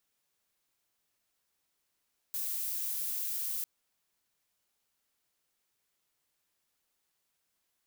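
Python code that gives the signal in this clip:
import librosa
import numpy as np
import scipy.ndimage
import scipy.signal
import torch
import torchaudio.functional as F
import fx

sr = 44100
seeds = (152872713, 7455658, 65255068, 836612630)

y = fx.noise_colour(sr, seeds[0], length_s=1.3, colour='violet', level_db=-35.0)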